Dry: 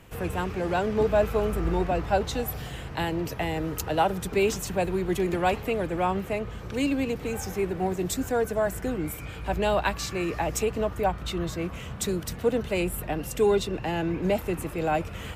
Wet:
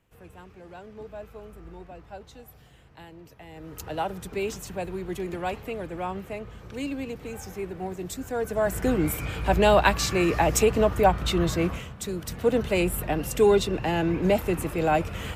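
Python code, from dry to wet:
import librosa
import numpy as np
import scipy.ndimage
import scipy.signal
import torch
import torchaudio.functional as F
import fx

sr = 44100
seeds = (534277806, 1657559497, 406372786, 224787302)

y = fx.gain(x, sr, db=fx.line((3.43, -18.0), (3.85, -6.0), (8.24, -6.0), (8.9, 6.0), (11.71, 6.0), (11.95, -6.0), (12.57, 3.0)))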